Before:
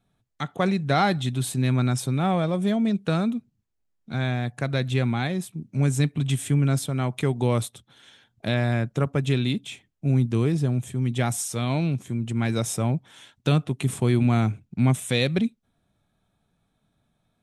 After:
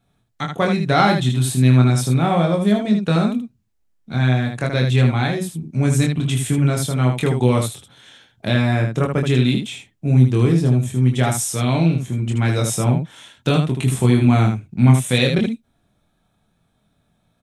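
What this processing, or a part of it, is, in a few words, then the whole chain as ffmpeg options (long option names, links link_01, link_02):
slapback doubling: -filter_complex "[0:a]asplit=3[link_01][link_02][link_03];[link_02]adelay=24,volume=-3.5dB[link_04];[link_03]adelay=78,volume=-5.5dB[link_05];[link_01][link_04][link_05]amix=inputs=3:normalize=0,volume=4dB"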